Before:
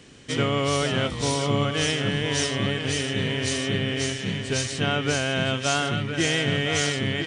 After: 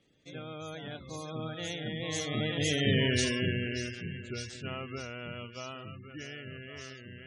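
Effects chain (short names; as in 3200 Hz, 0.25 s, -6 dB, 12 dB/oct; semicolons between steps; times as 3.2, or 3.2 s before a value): Doppler pass-by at 2.97, 34 m/s, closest 11 m; spectral gate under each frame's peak -20 dB strong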